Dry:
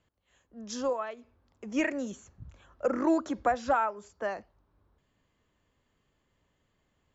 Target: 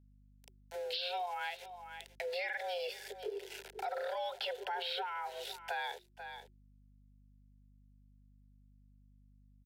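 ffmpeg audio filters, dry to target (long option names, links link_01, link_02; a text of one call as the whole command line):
ffmpeg -i in.wav -filter_complex "[0:a]firequalizer=gain_entry='entry(100,0);entry(210,-4);entry(290,-13);entry(520,-10);entry(750,-5);entry(2200,1);entry(4300,14);entry(7700,-15)':delay=0.05:min_phase=1,aeval=exprs='val(0)*gte(abs(val(0)),0.002)':channel_layout=same,alimiter=level_in=8dB:limit=-24dB:level=0:latency=1:release=37,volume=-8dB,afreqshift=490,asetrate=32667,aresample=44100,asuperstop=centerf=1200:order=4:qfactor=2.6,asplit=2[link_01][link_02];[link_02]aecho=0:1:498:0.0891[link_03];[link_01][link_03]amix=inputs=2:normalize=0,asetrate=42845,aresample=44100,atempo=1.0293,aeval=exprs='val(0)+0.000112*(sin(2*PI*50*n/s)+sin(2*PI*2*50*n/s)/2+sin(2*PI*3*50*n/s)/3+sin(2*PI*4*50*n/s)/4+sin(2*PI*5*50*n/s)/5)':channel_layout=same,acompressor=threshold=-60dB:ratio=2.5,volume=17dB" out.wav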